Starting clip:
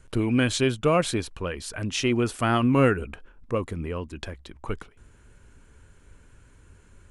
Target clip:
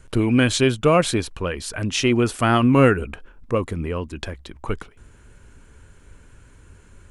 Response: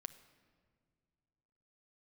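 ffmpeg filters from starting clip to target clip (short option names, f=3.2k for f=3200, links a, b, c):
-af "volume=5dB"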